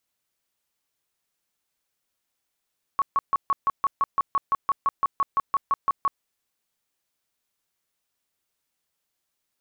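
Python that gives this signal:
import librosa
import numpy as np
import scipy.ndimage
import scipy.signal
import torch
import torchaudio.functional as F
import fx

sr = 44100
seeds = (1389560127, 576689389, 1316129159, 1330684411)

y = fx.tone_burst(sr, hz=1110.0, cycles=32, every_s=0.17, bursts=19, level_db=-17.5)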